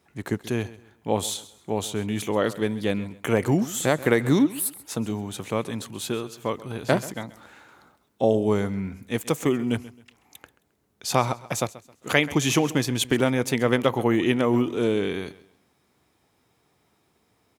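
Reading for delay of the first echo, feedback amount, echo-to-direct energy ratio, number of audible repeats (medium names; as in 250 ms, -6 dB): 133 ms, 30%, -17.5 dB, 2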